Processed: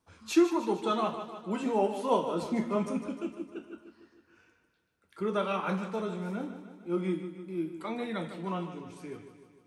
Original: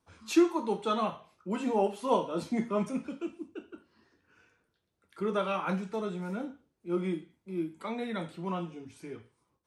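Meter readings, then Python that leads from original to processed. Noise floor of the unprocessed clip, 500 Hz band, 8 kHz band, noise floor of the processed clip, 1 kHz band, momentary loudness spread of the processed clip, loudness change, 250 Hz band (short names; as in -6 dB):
-79 dBFS, +0.5 dB, +0.5 dB, -72 dBFS, +0.5 dB, 16 LU, +0.5 dB, +0.5 dB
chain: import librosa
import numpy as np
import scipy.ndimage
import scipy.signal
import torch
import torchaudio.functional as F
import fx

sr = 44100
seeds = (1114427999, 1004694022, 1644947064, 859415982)

y = fx.echo_feedback(x, sr, ms=152, feedback_pct=59, wet_db=-11)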